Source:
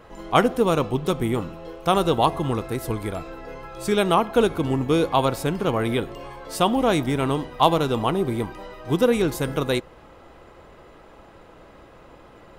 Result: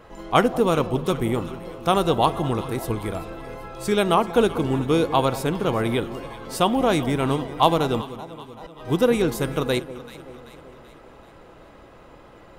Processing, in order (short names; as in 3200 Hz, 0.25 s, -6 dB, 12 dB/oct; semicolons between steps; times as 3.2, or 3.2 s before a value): 8.01–8.86 flipped gate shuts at -27 dBFS, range -25 dB; echo with dull and thin repeats by turns 0.192 s, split 910 Hz, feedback 72%, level -13.5 dB